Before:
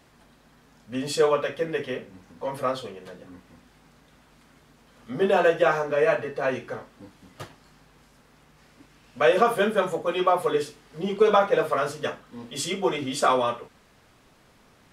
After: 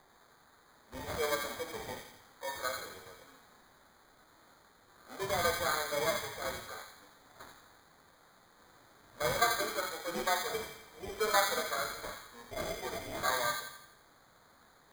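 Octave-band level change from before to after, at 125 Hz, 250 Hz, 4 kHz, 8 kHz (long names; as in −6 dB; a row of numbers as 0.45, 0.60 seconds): −11.0, −16.0, −3.0, 0.0 decibels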